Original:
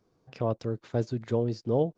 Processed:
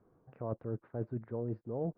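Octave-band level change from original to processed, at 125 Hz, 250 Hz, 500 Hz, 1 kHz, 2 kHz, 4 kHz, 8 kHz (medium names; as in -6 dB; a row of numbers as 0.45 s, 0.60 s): -8.0 dB, -8.5 dB, -10.0 dB, -10.5 dB, -13.5 dB, under -35 dB, no reading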